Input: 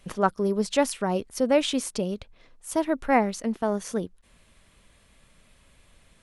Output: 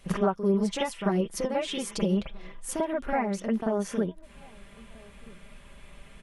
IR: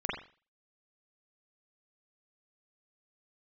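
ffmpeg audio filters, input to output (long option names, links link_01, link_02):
-filter_complex "[0:a]acompressor=threshold=-33dB:ratio=6,asettb=1/sr,asplit=3[link_01][link_02][link_03];[link_01]atrim=end=0.494[link_04];[link_02]atrim=start=0.49:end=2.71,asetpts=PTS-STARTPTS,afade=type=in:duration=0.004:curve=qsin,afade=type=out:start_time=2.216:duration=0.004:curve=qsin,aecho=1:1:6:0.59,atrim=end_sample=97902[link_05];[link_03]atrim=start=2.706[link_06];[link_04][link_05]acrossfade=duration=0.004:curve1=hsin:curve2=qsin[link_07];[link_07][link_06]acrossfade=duration=0.004:curve1=qsin:curve2=hsin,asplit=2[link_08][link_09];[link_09]adelay=1283,volume=-25dB,highshelf=frequency=4000:gain=-28.9[link_10];[link_08][link_10]amix=inputs=2:normalize=0[link_11];[1:a]atrim=start_sample=2205,atrim=end_sample=3528[link_12];[link_11][link_12]afir=irnorm=-1:irlink=0,volume=2.5dB"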